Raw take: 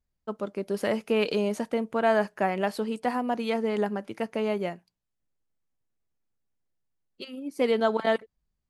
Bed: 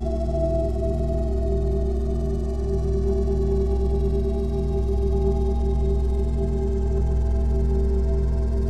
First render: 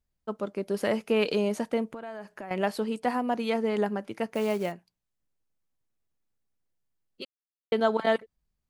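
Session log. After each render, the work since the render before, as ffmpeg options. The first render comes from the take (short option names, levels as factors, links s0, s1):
-filter_complex "[0:a]asettb=1/sr,asplit=3[s0][s1][s2];[s0]atrim=end=1.944[s3];[s1]atrim=start=1.94:end=2.51,asetpts=PTS-STARTPTS,afade=t=in:d=0.004:c=qsin,afade=t=out:st=0.566:d=0.004:c=qsin,acompressor=threshold=0.0141:ratio=6:attack=3.2:release=140:knee=1:detection=peak[s4];[s2]atrim=start=2.506[s5];[s3][s4]acrossfade=d=0.004:c1=hsin:c2=qsin[s6];[s6][s5]acrossfade=d=0.004:c1=qsin:c2=hsin,asettb=1/sr,asplit=3[s7][s8][s9];[s7]atrim=end=4.324[s10];[s8]atrim=start=4.32:end=4.72,asetpts=PTS-STARTPTS,afade=t=in:d=0.004:c=qsin,afade=t=out:st=0.396:d=0.004:c=qsin,acrusher=bits=5:mode=log:mix=0:aa=0.000001[s11];[s9]atrim=start=4.716[s12];[s10][s11]acrossfade=d=0.004:c1=hsin:c2=qsin[s13];[s13][s12]acrossfade=d=0.004:c1=qsin:c2=hsin,asplit=3[s14][s15][s16];[s14]atrim=end=7.25,asetpts=PTS-STARTPTS,afade=t=out:st=7.246:d=0.004:c=hsin[s17];[s15]atrim=start=7.25:end=7.72,asetpts=PTS-STARTPTS,volume=0[s18];[s16]atrim=start=7.72,asetpts=PTS-STARTPTS,afade=t=in:d=0.004:c=hsin[s19];[s17][s18][s19]concat=n=3:v=0:a=1"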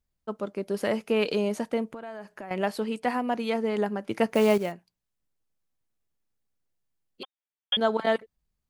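-filter_complex "[0:a]asettb=1/sr,asplit=3[s0][s1][s2];[s0]atrim=end=2.814[s3];[s1]atrim=start=2.81:end=3.39,asetpts=PTS-STARTPTS,afade=t=in:d=0.004:c=qsin,afade=t=out:st=0.576:d=0.004:c=qsin,equalizer=f=2300:w=1.5:g=4.5[s4];[s2]atrim=start=3.386[s5];[s3][s4]acrossfade=d=0.004:c1=hsin:c2=qsin[s6];[s6][s5]acrossfade=d=0.004:c1=qsin:c2=hsin,asettb=1/sr,asplit=3[s7][s8][s9];[s7]atrim=end=4.094[s10];[s8]atrim=start=4.09:end=4.58,asetpts=PTS-STARTPTS,afade=t=in:d=0.004:c=qsin,afade=t=out:st=0.486:d=0.004:c=qsin,acontrast=75[s11];[s9]atrim=start=4.576[s12];[s10][s11]acrossfade=d=0.004:c1=hsin:c2=qsin[s13];[s13][s12]acrossfade=d=0.004:c1=qsin:c2=hsin,asettb=1/sr,asplit=3[s14][s15][s16];[s14]atrim=end=7.234[s17];[s15]atrim=start=7.23:end=7.77,asetpts=PTS-STARTPTS,afade=t=in:d=0.004:c=qsin,afade=t=out:st=0.536:d=0.004:c=qsin,lowpass=f=3100:t=q:w=0.5098,lowpass=f=3100:t=q:w=0.6013,lowpass=f=3100:t=q:w=0.9,lowpass=f=3100:t=q:w=2.563,afreqshift=-3700[s18];[s16]atrim=start=7.766[s19];[s17][s18]acrossfade=d=0.004:c1=hsin:c2=qsin[s20];[s20][s19]acrossfade=d=0.004:c1=qsin:c2=hsin"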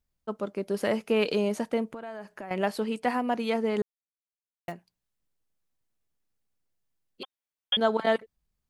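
-filter_complex "[0:a]asplit=3[s0][s1][s2];[s0]atrim=end=3.82,asetpts=PTS-STARTPTS,afade=t=out:st=3.816:d=0.004:c=hsin[s3];[s1]atrim=start=3.82:end=4.68,asetpts=PTS-STARTPTS,volume=0[s4];[s2]atrim=start=4.68,asetpts=PTS-STARTPTS,afade=t=in:d=0.004:c=hsin[s5];[s3][s4][s5]concat=n=3:v=0:a=1"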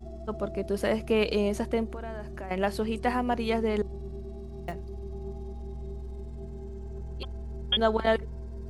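-filter_complex "[1:a]volume=0.15[s0];[0:a][s0]amix=inputs=2:normalize=0"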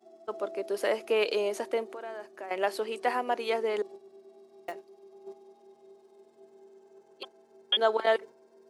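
-af "highpass=f=350:w=0.5412,highpass=f=350:w=1.3066,agate=range=0.447:threshold=0.00708:ratio=16:detection=peak"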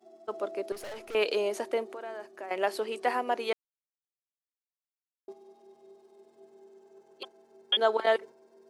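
-filter_complex "[0:a]asettb=1/sr,asplit=3[s0][s1][s2];[s0]atrim=end=0.724[s3];[s1]atrim=start=0.72:end=1.15,asetpts=PTS-STARTPTS,afade=t=in:d=0.004:c=qsin,afade=t=out:st=0.426:d=0.004:c=qsin,aeval=exprs='(tanh(89.1*val(0)+0.4)-tanh(0.4))/89.1':c=same[s4];[s2]atrim=start=1.146[s5];[s3][s4]acrossfade=d=0.004:c1=hsin:c2=qsin[s6];[s6][s5]acrossfade=d=0.004:c1=qsin:c2=hsin,asplit=3[s7][s8][s9];[s7]atrim=end=3.53,asetpts=PTS-STARTPTS,afade=t=out:st=3.526:d=0.004:c=hsin[s10];[s8]atrim=start=3.53:end=5.28,asetpts=PTS-STARTPTS,volume=0[s11];[s9]atrim=start=5.28,asetpts=PTS-STARTPTS,afade=t=in:d=0.004:c=hsin[s12];[s10][s11][s12]concat=n=3:v=0:a=1"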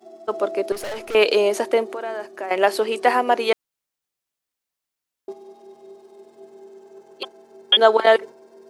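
-af "volume=3.55,alimiter=limit=0.794:level=0:latency=1"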